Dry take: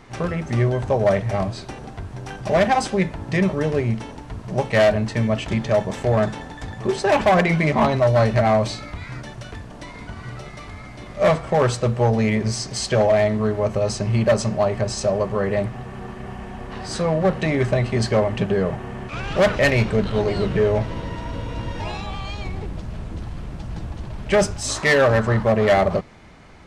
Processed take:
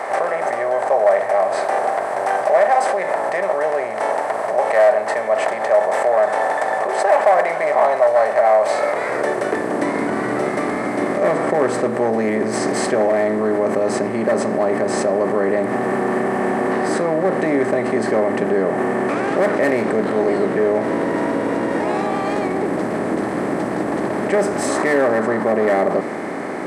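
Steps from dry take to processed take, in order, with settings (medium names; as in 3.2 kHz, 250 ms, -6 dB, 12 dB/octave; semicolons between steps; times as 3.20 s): spectral levelling over time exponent 0.6; high-order bell 4.2 kHz -10.5 dB; in parallel at +2 dB: compressor with a negative ratio -24 dBFS, ratio -1; on the sum: high-pass sweep 640 Hz -> 290 Hz, 8.63–9.85 s; trim -6.5 dB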